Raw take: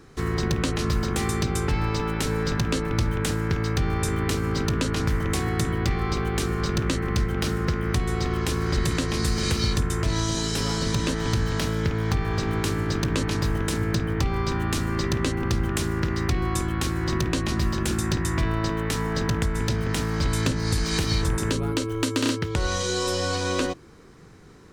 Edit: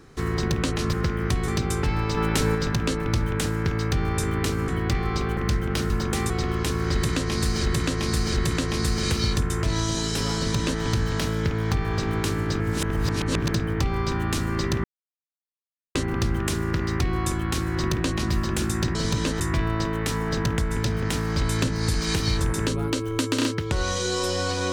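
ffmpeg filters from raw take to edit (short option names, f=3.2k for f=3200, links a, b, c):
-filter_complex "[0:a]asplit=16[a][b][c][d][e][f][g][h][i][j][k][l][m][n][o][p];[a]atrim=end=0.932[q];[b]atrim=start=7.568:end=8.122[r];[c]atrim=start=1.328:end=2.022[s];[d]atrim=start=2.018:end=2.402,asetpts=PTS-STARTPTS,volume=3.5dB[t];[e]atrim=start=2.398:end=4.532[u];[f]atrim=start=5.638:end=6.332[v];[g]atrim=start=7.038:end=7.572[w];[h]atrim=start=0.928:end=1.332[x];[i]atrim=start=8.118:end=9.452[y];[j]atrim=start=8.738:end=9.452[z];[k]atrim=start=8.738:end=13.002[aa];[l]atrim=start=12.998:end=13.912,asetpts=PTS-STARTPTS,areverse[ab];[m]atrim=start=13.908:end=15.24,asetpts=PTS-STARTPTS,afade=t=out:st=1.328:d=0.004:c=hsin,apad=pad_dur=1.11[ac];[n]atrim=start=15.24:end=18.242,asetpts=PTS-STARTPTS,afade=t=in:d=0.004:c=hsin[ad];[o]atrim=start=10.768:end=11.222[ae];[p]atrim=start=18.238[af];[q][r]acrossfade=d=0.004:c1=hsin:c2=hsin[ag];[ag][s]acrossfade=d=0.004:c1=hsin:c2=hsin[ah];[ah][t]acrossfade=d=0.004:c1=hsin:c2=hsin[ai];[ai][u]acrossfade=d=0.004:c1=hsin:c2=hsin[aj];[aj][v]acrossfade=d=0.004:c1=hsin:c2=hsin[ak];[ak][w]acrossfade=d=0.004:c1=hsin:c2=hsin[al];[al][x]acrossfade=d=0.004:c1=hsin:c2=hsin[am];[am][y]acrossfade=d=0.004:c1=hsin:c2=hsin[an];[an][z]acrossfade=d=0.004:c1=hsin:c2=hsin[ao];[ao][aa]acrossfade=d=0.004:c1=hsin:c2=hsin[ap];[ap][ab]acrossfade=d=0.004:c1=hsin:c2=hsin[aq];[ac][ad]concat=n=2:v=0:a=1[ar];[aq][ar]acrossfade=d=0.004:c1=hsin:c2=hsin[as];[as][ae]acrossfade=d=0.004:c1=hsin:c2=hsin[at];[at][af]acrossfade=d=0.004:c1=hsin:c2=hsin"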